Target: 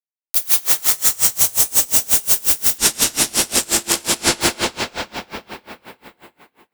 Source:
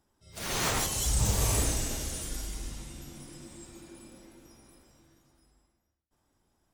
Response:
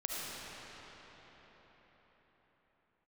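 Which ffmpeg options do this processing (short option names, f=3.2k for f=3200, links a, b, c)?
-filter_complex "[0:a]aeval=exprs='val(0)+0.5*0.0158*sgn(val(0))':c=same,acrusher=bits=5:mix=0:aa=0.000001,aemphasis=mode=production:type=riaa[a];[1:a]atrim=start_sample=2205,asetrate=48510,aresample=44100[b];[a][b]afir=irnorm=-1:irlink=0,acompressor=threshold=-36dB:ratio=5,asettb=1/sr,asplit=3[c][d][e];[c]atrim=end=2.784[f];[d]atrim=start=2.78:end=4.41,asetpts=PTS-STARTPTS,afade=t=in:d=0.004:c=qsin,afade=t=out:st=1.626:d=0.004:c=qsin,lowpass=8.7k[g];[e]atrim=start=4.406[h];[f][g]acrossfade=d=0.004:c1=hsin:c2=qsin[i];[i][h]acrossfade=d=0.004:c1=qsin:c2=hsin,alimiter=level_in=35.5dB:limit=-1dB:release=50:level=0:latency=1,aeval=exprs='val(0)*pow(10,-28*(0.5-0.5*cos(2*PI*5.6*n/s))/20)':c=same"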